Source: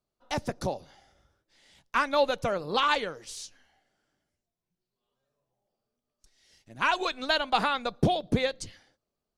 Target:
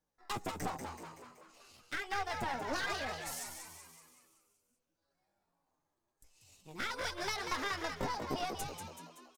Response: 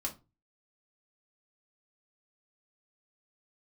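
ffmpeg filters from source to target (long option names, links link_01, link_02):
-filter_complex "[0:a]acompressor=threshold=-31dB:ratio=6,flanger=delay=8.6:depth=3.3:regen=-23:speed=1.4:shape=triangular,aeval=exprs='clip(val(0),-1,0.0075)':channel_layout=same,asetrate=60591,aresample=44100,atempo=0.727827,asplit=8[link_01][link_02][link_03][link_04][link_05][link_06][link_07][link_08];[link_02]adelay=189,afreqshift=80,volume=-6dB[link_09];[link_03]adelay=378,afreqshift=160,volume=-11.4dB[link_10];[link_04]adelay=567,afreqshift=240,volume=-16.7dB[link_11];[link_05]adelay=756,afreqshift=320,volume=-22.1dB[link_12];[link_06]adelay=945,afreqshift=400,volume=-27.4dB[link_13];[link_07]adelay=1134,afreqshift=480,volume=-32.8dB[link_14];[link_08]adelay=1323,afreqshift=560,volume=-38.1dB[link_15];[link_01][link_09][link_10][link_11][link_12][link_13][link_14][link_15]amix=inputs=8:normalize=0,volume=2.5dB"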